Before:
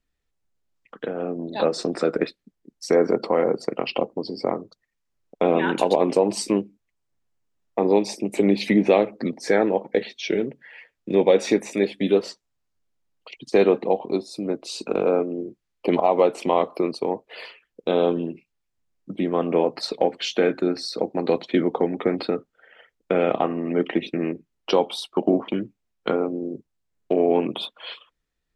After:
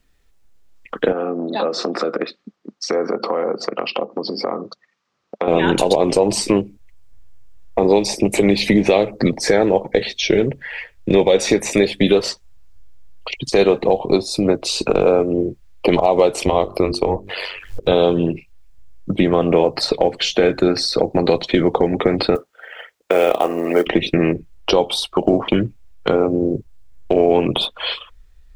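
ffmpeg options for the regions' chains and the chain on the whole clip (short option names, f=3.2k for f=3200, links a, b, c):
-filter_complex "[0:a]asettb=1/sr,asplit=3[a][b][c];[a]atrim=end=1.124[d];[b]atrim=start=1.12:end=5.48,asetpts=PTS-STARTPTS,afade=t=in:d=0.004:c=qsin,afade=t=out:st=4.356:d=0.004:c=qsin,acompressor=threshold=-36dB:ratio=3:attack=3.2:release=140:knee=1:detection=peak,highpass=f=180:w=0.5412,highpass=f=180:w=1.3066,equalizer=f=210:t=q:w=4:g=5,equalizer=f=620:t=q:w=4:g=9,equalizer=f=1.2k:t=q:w=4:g=9,lowpass=f=5.9k:w=0.5412,lowpass=f=5.9k:w=1.3066,bandreject=f=620:w=5.3[e];[c]atrim=start=5.476[f];[d][e]acrossfade=d=0.004:c1=hsin:c2=qsin[g];[g][f]acrossfade=d=0.004:c1=qsin:c2=hsin,asettb=1/sr,asplit=3[h][i][j];[h]atrim=end=16.434[k];[i]atrim=start=16.43:end=17.92,asetpts=PTS-STARTPTS,afade=t=in:d=0.004:c=qsin,afade=t=out:st=1.486:d=0.004:c=qsin,bandreject=f=50:t=h:w=6,bandreject=f=100:t=h:w=6,bandreject=f=150:t=h:w=6,bandreject=f=200:t=h:w=6,bandreject=f=250:t=h:w=6,bandreject=f=300:t=h:w=6,bandreject=f=350:t=h:w=6,bandreject=f=400:t=h:w=6,acompressor=mode=upward:threshold=-34dB:ratio=2.5:attack=3.2:release=140:knee=2.83:detection=peak,tremolo=f=94:d=0.667[l];[j]atrim=start=17.916[m];[k][l]acrossfade=d=0.004:c1=hsin:c2=qsin[n];[n][m]acrossfade=d=0.004:c1=qsin:c2=hsin,asettb=1/sr,asplit=3[o][p][q];[o]atrim=end=22.354[r];[p]atrim=start=22.35:end=23.87,asetpts=PTS-STARTPTS,afade=t=in:d=0.004:c=qsin,afade=t=out:st=1.516:d=0.004:c=qsin,highpass=390,acrusher=bits=9:mode=log:mix=0:aa=0.000001[s];[q]atrim=start=23.866[t];[r][s]acrossfade=d=0.004:c1=hsin:c2=qsin[u];[u][t]acrossfade=d=0.004:c1=qsin:c2=hsin,asubboost=boost=11.5:cutoff=68,acrossover=split=720|3600[v][w][x];[v]acompressor=threshold=-27dB:ratio=4[y];[w]acompressor=threshold=-41dB:ratio=4[z];[x]acompressor=threshold=-39dB:ratio=4[aa];[y][z][aa]amix=inputs=3:normalize=0,alimiter=level_in=17dB:limit=-1dB:release=50:level=0:latency=1,volume=-1.5dB"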